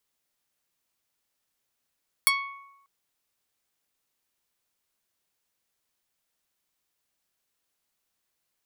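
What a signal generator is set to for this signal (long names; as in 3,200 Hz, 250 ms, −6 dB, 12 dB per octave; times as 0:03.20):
Karplus-Strong string C#6, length 0.59 s, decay 0.96 s, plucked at 0.27, medium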